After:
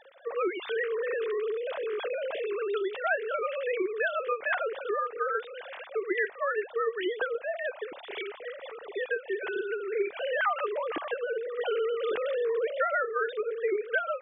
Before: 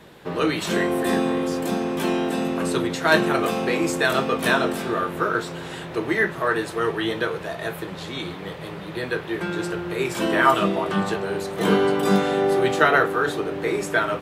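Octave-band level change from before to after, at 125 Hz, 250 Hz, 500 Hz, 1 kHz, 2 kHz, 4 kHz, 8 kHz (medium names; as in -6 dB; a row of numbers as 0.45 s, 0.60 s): under -40 dB, -18.5 dB, -5.5 dB, -9.5 dB, -7.5 dB, -13.0 dB, under -40 dB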